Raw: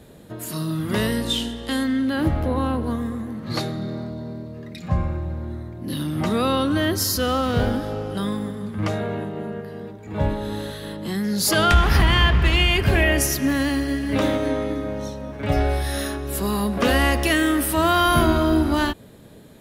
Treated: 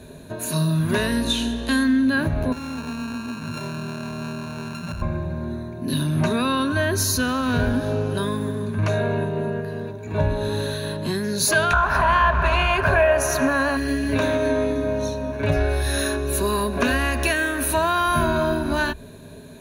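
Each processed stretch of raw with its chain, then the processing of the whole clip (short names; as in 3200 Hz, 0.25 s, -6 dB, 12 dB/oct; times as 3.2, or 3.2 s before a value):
2.52–5.02 sample sorter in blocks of 32 samples + high shelf 7300 Hz -9.5 dB + compressor 12:1, threshold -31 dBFS
11.73–13.77 band shelf 890 Hz +13 dB + Doppler distortion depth 0.16 ms
whole clip: dynamic EQ 1600 Hz, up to +5 dB, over -33 dBFS, Q 1.2; compressor 4:1, threshold -23 dBFS; ripple EQ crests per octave 1.5, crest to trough 11 dB; gain +3 dB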